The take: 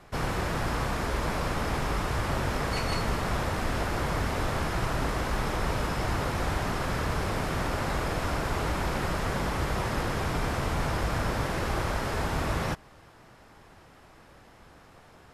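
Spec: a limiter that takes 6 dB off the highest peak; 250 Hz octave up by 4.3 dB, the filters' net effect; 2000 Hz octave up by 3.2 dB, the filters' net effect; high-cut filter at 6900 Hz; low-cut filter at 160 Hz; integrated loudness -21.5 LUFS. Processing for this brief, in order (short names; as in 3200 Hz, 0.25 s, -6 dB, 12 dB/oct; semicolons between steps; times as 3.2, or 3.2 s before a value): HPF 160 Hz; LPF 6900 Hz; bell 250 Hz +7 dB; bell 2000 Hz +4 dB; gain +9 dB; limiter -12.5 dBFS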